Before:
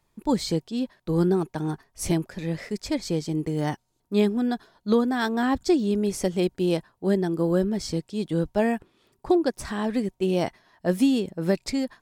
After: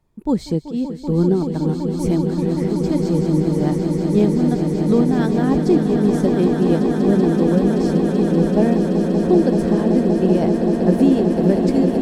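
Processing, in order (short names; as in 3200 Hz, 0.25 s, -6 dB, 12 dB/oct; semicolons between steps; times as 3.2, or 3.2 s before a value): tilt shelf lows +6.5 dB, about 780 Hz; on a send: swelling echo 0.191 s, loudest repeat 8, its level -8.5 dB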